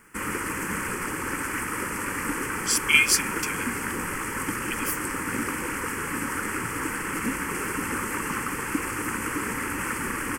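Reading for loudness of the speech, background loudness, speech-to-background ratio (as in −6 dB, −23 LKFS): −23.5 LKFS, −29.0 LKFS, 5.5 dB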